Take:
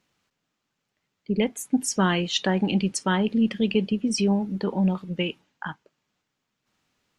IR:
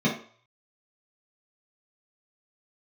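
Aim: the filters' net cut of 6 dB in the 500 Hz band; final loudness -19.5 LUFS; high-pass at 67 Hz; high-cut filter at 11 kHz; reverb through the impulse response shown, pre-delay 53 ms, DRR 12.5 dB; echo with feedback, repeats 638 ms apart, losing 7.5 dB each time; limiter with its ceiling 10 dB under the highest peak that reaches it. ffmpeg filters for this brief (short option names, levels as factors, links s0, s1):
-filter_complex "[0:a]highpass=67,lowpass=11000,equalizer=f=500:t=o:g=-8,alimiter=limit=0.1:level=0:latency=1,aecho=1:1:638|1276|1914|2552|3190:0.422|0.177|0.0744|0.0312|0.0131,asplit=2[s0][s1];[1:a]atrim=start_sample=2205,adelay=53[s2];[s1][s2]afir=irnorm=-1:irlink=0,volume=0.0531[s3];[s0][s3]amix=inputs=2:normalize=0,volume=2.11"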